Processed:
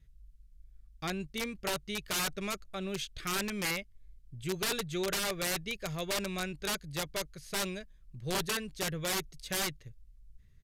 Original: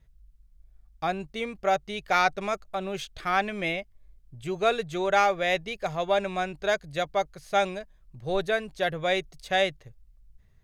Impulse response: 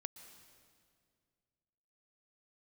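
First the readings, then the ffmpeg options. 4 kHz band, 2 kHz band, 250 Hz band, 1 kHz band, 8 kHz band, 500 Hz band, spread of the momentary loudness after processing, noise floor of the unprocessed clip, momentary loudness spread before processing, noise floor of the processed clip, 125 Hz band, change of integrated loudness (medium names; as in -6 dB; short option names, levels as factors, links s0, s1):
-1.0 dB, -7.5 dB, -2.5 dB, -13.5 dB, +9.0 dB, -11.0 dB, 7 LU, -59 dBFS, 9 LU, -60 dBFS, -1.0 dB, -7.0 dB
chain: -af "equalizer=f=780:t=o:w=1.3:g=-14.5,aeval=exprs='(mod(18.8*val(0)+1,2)-1)/18.8':c=same,aresample=32000,aresample=44100"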